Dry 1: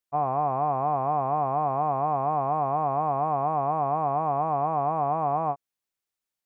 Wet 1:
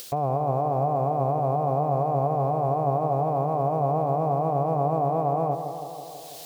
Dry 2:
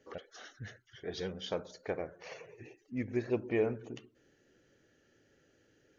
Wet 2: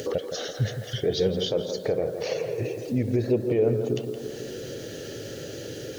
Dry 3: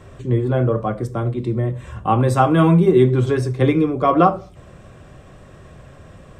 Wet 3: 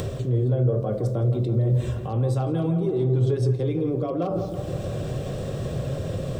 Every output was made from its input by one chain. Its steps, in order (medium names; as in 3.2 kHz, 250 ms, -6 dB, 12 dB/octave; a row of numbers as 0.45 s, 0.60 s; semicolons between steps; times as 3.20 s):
in parallel at +0.5 dB: upward compressor, threshold -24 dBFS; on the sum: word length cut 10-bit, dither triangular; reverse; compression 6:1, threshold -20 dBFS; reverse; peak limiter -19.5 dBFS; graphic EQ 125/500/1000/2000/4000 Hz +10/+10/-6/-6/+6 dB; tape echo 165 ms, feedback 74%, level -7 dB, low-pass 1.5 kHz; tape noise reduction on one side only encoder only; peak normalisation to -12 dBFS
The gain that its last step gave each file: 0.0 dB, -1.5 dB, -5.0 dB